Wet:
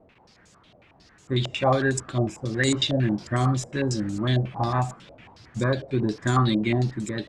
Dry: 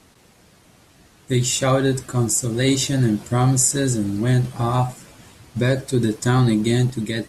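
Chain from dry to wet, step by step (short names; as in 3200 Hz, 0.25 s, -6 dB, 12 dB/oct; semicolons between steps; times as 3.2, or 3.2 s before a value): stepped low-pass 11 Hz 620–7100 Hz; gain -5.5 dB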